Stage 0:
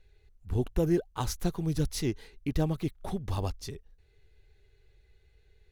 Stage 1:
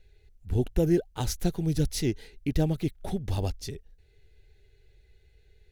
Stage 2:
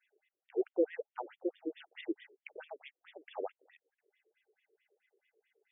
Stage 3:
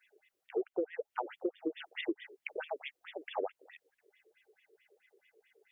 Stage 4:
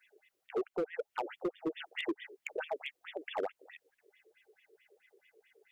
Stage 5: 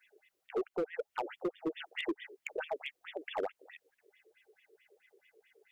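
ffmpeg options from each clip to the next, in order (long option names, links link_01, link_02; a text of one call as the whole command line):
ffmpeg -i in.wav -af "equalizer=frequency=1100:width=3:gain=-12.5,volume=3dB" out.wav
ffmpeg -i in.wav -af "afftfilt=real='re*between(b*sr/1024,410*pow(2600/410,0.5+0.5*sin(2*PI*4.6*pts/sr))/1.41,410*pow(2600/410,0.5+0.5*sin(2*PI*4.6*pts/sr))*1.41)':imag='im*between(b*sr/1024,410*pow(2600/410,0.5+0.5*sin(2*PI*4.6*pts/sr))/1.41,410*pow(2600/410,0.5+0.5*sin(2*PI*4.6*pts/sr))*1.41)':win_size=1024:overlap=0.75,volume=-1dB" out.wav
ffmpeg -i in.wav -af "acompressor=threshold=-39dB:ratio=10,volume=8.5dB" out.wav
ffmpeg -i in.wav -af "volume=30dB,asoftclip=hard,volume=-30dB,volume=2dB" out.wav
ffmpeg -i in.wav -af "aeval=exprs='0.0422*(cos(1*acos(clip(val(0)/0.0422,-1,1)))-cos(1*PI/2))+0.000473*(cos(2*acos(clip(val(0)/0.0422,-1,1)))-cos(2*PI/2))':channel_layout=same" out.wav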